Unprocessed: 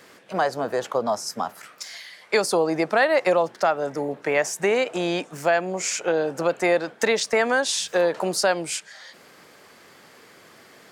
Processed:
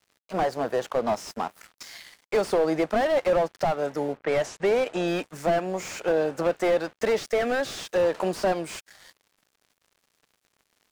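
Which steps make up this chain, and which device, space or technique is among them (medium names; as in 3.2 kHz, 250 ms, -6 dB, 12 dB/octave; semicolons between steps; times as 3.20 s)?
early transistor amplifier (crossover distortion -44 dBFS; slew-rate limiter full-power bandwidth 73 Hz); 4.17–5.08 s: level-controlled noise filter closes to 2.1 kHz, open at -20 dBFS; 7.19–7.79 s: peaking EQ 960 Hz -14.5 dB 0.21 oct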